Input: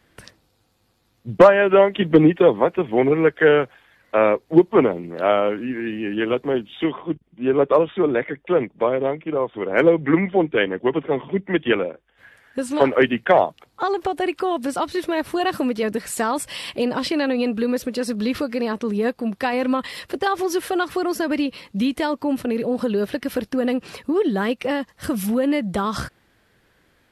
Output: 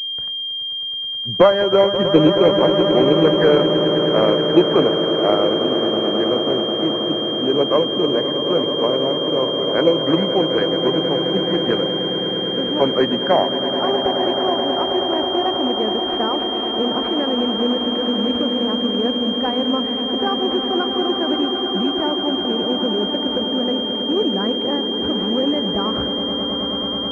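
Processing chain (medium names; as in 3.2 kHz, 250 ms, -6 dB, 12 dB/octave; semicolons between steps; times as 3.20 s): echo with a slow build-up 107 ms, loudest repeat 8, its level -12 dB; class-D stage that switches slowly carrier 3.2 kHz; trim -1 dB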